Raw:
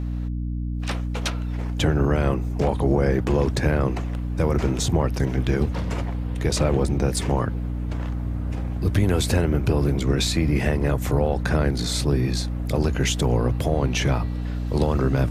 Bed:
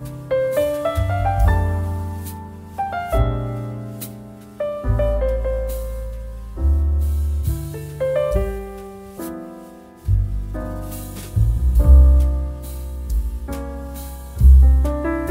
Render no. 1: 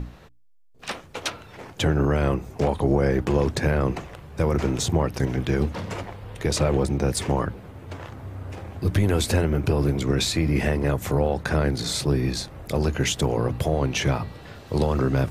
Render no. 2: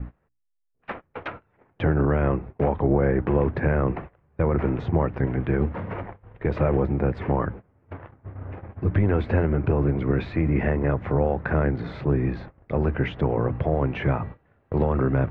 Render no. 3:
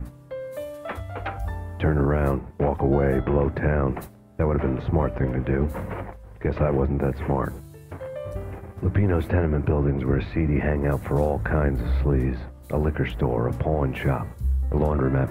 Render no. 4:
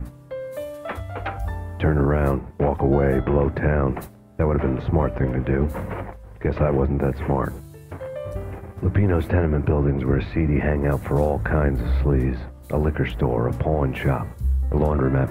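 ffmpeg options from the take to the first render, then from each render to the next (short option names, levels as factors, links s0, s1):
-af "bandreject=f=60:t=h:w=6,bandreject=f=120:t=h:w=6,bandreject=f=180:t=h:w=6,bandreject=f=240:t=h:w=6,bandreject=f=300:t=h:w=6"
-af "agate=range=0.0891:threshold=0.0178:ratio=16:detection=peak,lowpass=f=2100:w=0.5412,lowpass=f=2100:w=1.3066"
-filter_complex "[1:a]volume=0.188[s0];[0:a][s0]amix=inputs=2:normalize=0"
-af "volume=1.26"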